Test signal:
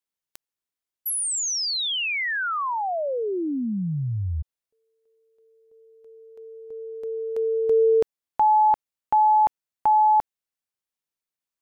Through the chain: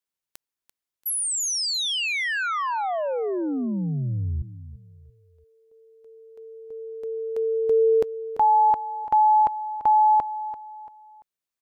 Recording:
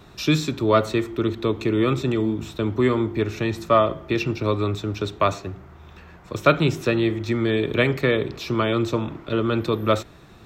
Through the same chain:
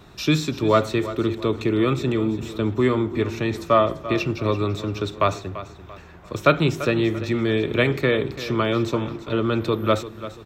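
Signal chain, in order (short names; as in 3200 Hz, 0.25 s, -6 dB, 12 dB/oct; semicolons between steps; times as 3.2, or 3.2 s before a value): feedback echo 0.34 s, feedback 36%, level -14 dB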